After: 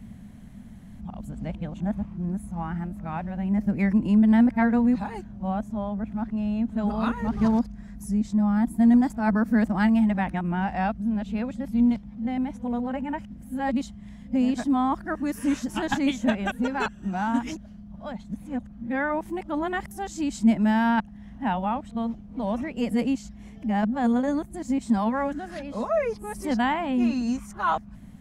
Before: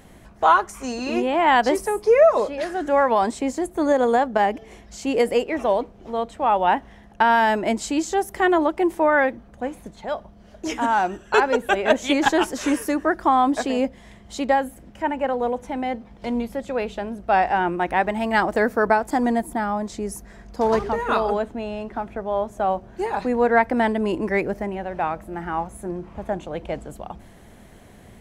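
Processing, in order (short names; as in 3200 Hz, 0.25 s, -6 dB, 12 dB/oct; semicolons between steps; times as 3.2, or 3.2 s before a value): whole clip reversed; resonant low shelf 290 Hz +9.5 dB, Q 3; gain -8 dB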